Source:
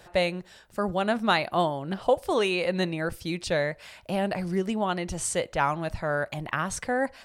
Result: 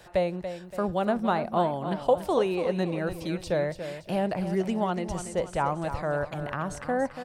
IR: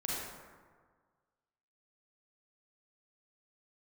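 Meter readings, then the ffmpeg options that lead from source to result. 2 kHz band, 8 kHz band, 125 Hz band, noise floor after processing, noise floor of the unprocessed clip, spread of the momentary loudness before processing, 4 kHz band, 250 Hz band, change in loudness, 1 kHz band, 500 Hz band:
-7.0 dB, -9.5 dB, +0.5 dB, -46 dBFS, -54 dBFS, 7 LU, -8.5 dB, +0.5 dB, -1.0 dB, -1.0 dB, +0.5 dB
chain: -filter_complex "[0:a]acrossover=split=750|1100[s0][s1][s2];[s2]acompressor=threshold=0.00891:ratio=6[s3];[s0][s1][s3]amix=inputs=3:normalize=0,aecho=1:1:285|570|855|1140:0.316|0.133|0.0558|0.0234"

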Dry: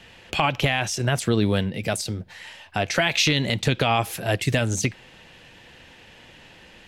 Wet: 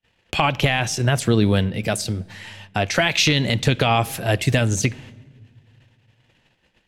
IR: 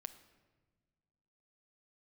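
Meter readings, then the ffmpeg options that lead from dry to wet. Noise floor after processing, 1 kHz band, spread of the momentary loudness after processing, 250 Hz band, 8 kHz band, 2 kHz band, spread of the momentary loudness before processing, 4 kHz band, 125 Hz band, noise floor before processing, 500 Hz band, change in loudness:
-65 dBFS, +2.5 dB, 10 LU, +3.5 dB, +2.5 dB, +2.5 dB, 10 LU, +2.5 dB, +4.5 dB, -50 dBFS, +2.5 dB, +3.0 dB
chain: -filter_complex "[0:a]agate=range=0.00891:threshold=0.00562:ratio=16:detection=peak,asplit=2[s0][s1];[1:a]atrim=start_sample=2205,asetrate=32634,aresample=44100,lowshelf=f=230:g=8.5[s2];[s1][s2]afir=irnorm=-1:irlink=0,volume=0.447[s3];[s0][s3]amix=inputs=2:normalize=0"

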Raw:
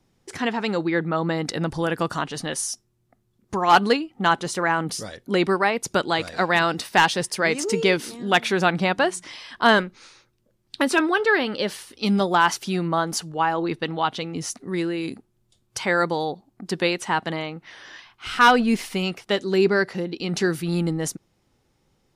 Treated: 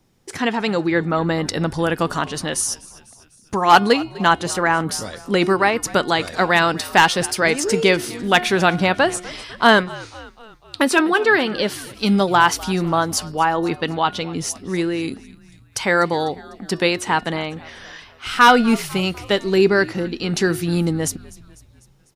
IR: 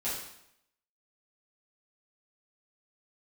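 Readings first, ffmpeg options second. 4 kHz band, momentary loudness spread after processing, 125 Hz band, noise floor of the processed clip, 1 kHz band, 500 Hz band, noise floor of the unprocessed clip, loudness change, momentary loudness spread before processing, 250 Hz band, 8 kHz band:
+4.5 dB, 13 LU, +4.0 dB, -51 dBFS, +4.0 dB, +4.0 dB, -68 dBFS, +4.0 dB, 12 LU, +4.0 dB, +5.5 dB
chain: -filter_complex "[0:a]highshelf=f=12000:g=7,bandreject=f=359.1:t=h:w=4,bandreject=f=718.2:t=h:w=4,bandreject=f=1077.3:t=h:w=4,bandreject=f=1436.4:t=h:w=4,bandreject=f=1795.5:t=h:w=4,bandreject=f=2154.6:t=h:w=4,bandreject=f=2513.7:t=h:w=4,bandreject=f=2872.8:t=h:w=4,bandreject=f=3231.9:t=h:w=4,bandreject=f=3591:t=h:w=4,bandreject=f=3950.1:t=h:w=4,bandreject=f=4309.2:t=h:w=4,bandreject=f=4668.3:t=h:w=4,bandreject=f=5027.4:t=h:w=4,bandreject=f=5386.5:t=h:w=4,asplit=5[s0][s1][s2][s3][s4];[s1]adelay=249,afreqshift=-74,volume=0.0944[s5];[s2]adelay=498,afreqshift=-148,volume=0.0531[s6];[s3]adelay=747,afreqshift=-222,volume=0.0295[s7];[s4]adelay=996,afreqshift=-296,volume=0.0166[s8];[s0][s5][s6][s7][s8]amix=inputs=5:normalize=0,volume=1.58"

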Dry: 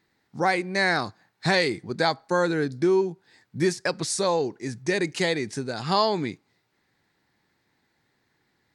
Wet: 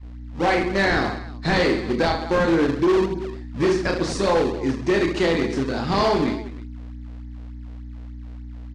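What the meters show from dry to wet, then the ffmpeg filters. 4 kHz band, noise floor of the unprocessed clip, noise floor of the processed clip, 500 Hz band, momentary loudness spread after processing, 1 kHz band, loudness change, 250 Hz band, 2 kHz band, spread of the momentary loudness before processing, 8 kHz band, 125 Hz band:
0.0 dB, -72 dBFS, -36 dBFS, +4.5 dB, 19 LU, +2.5 dB, +3.5 dB, +6.5 dB, +2.0 dB, 9 LU, -4.5 dB, +5.0 dB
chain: -filter_complex "[0:a]aeval=exprs='val(0)+0.0112*(sin(2*PI*60*n/s)+sin(2*PI*2*60*n/s)/2+sin(2*PI*3*60*n/s)/3+sin(2*PI*4*60*n/s)/4+sin(2*PI*5*60*n/s)/5)':c=same,equalizer=f=160:w=1.5:g=-5.5,asplit=2[s0][s1];[s1]aecho=0:1:30|72|130.8|213.1|328.4:0.631|0.398|0.251|0.158|0.1[s2];[s0][s2]amix=inputs=2:normalize=0,adynamicequalizer=threshold=0.0112:dfrequency=260:dqfactor=1.2:tfrequency=260:tqfactor=1.2:attack=5:release=100:ratio=0.375:range=3:mode=boostabove:tftype=bell,asplit=2[s3][s4];[s4]acrusher=samples=35:mix=1:aa=0.000001:lfo=1:lforange=56:lforate=3.4,volume=0.562[s5];[s3][s5]amix=inputs=2:normalize=0,asoftclip=type=hard:threshold=0.188,lowpass=4900"

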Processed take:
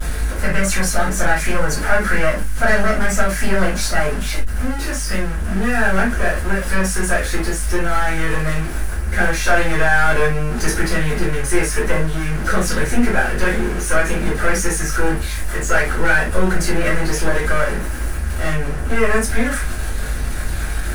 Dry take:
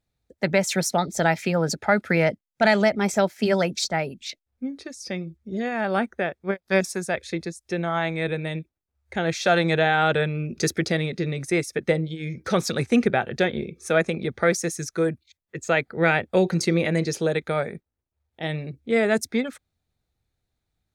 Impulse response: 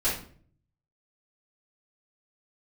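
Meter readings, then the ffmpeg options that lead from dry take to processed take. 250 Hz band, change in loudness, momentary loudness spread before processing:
+3.0 dB, +4.5 dB, 12 LU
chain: -filter_complex "[0:a]aeval=exprs='val(0)+0.5*0.075*sgn(val(0))':c=same,highshelf=f=8700:g=-7.5,asplit=2[s0][s1];[s1]alimiter=limit=0.211:level=0:latency=1,volume=1.12[s2];[s0][s2]amix=inputs=2:normalize=0,aeval=exprs='(tanh(3.16*val(0)+0.7)-tanh(0.7))/3.16':c=same,equalizer=f=100:t=o:w=0.67:g=-4,equalizer=f=1600:t=o:w=0.67:g=10,equalizer=f=4000:t=o:w=0.67:g=-4,equalizer=f=10000:t=o:w=0.67:g=12,aeval=exprs='val(0)+0.0447*(sin(2*PI*50*n/s)+sin(2*PI*2*50*n/s)/2+sin(2*PI*3*50*n/s)/3+sin(2*PI*4*50*n/s)/4+sin(2*PI*5*50*n/s)/5)':c=same[s3];[1:a]atrim=start_sample=2205,afade=t=out:st=0.13:d=0.01,atrim=end_sample=6174[s4];[s3][s4]afir=irnorm=-1:irlink=0,volume=0.251"

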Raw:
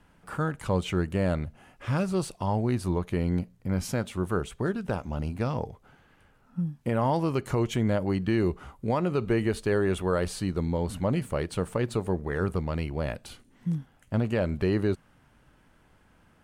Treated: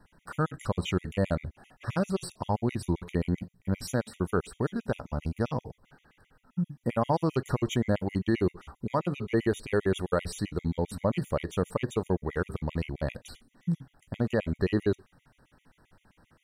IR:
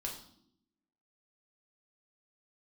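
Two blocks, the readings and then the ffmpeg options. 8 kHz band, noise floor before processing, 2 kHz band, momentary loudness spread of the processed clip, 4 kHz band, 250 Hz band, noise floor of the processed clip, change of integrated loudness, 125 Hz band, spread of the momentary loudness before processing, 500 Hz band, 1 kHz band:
-2.0 dB, -61 dBFS, -2.0 dB, 7 LU, -1.0 dB, -2.0 dB, -73 dBFS, -2.0 dB, -2.5 dB, 7 LU, -1.5 dB, -1.5 dB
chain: -filter_complex "[0:a]asplit=2[s0][s1];[1:a]atrim=start_sample=2205,atrim=end_sample=3969[s2];[s1][s2]afir=irnorm=-1:irlink=0,volume=0.224[s3];[s0][s3]amix=inputs=2:normalize=0,afftfilt=real='re*gt(sin(2*PI*7.6*pts/sr)*(1-2*mod(floor(b*sr/1024/1900),2)),0)':imag='im*gt(sin(2*PI*7.6*pts/sr)*(1-2*mod(floor(b*sr/1024/1900),2)),0)':win_size=1024:overlap=0.75"

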